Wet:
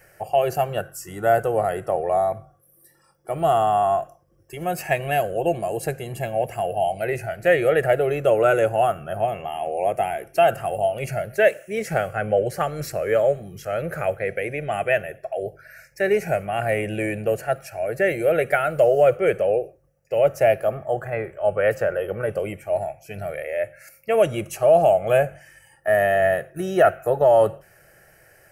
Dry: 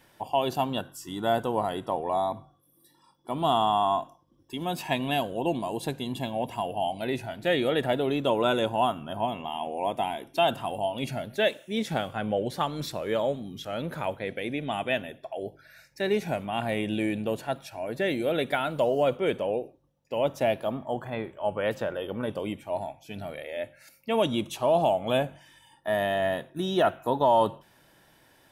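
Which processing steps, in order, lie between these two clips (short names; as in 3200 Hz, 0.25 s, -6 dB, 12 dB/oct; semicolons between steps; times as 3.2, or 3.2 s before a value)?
fixed phaser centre 970 Hz, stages 6; gain +9 dB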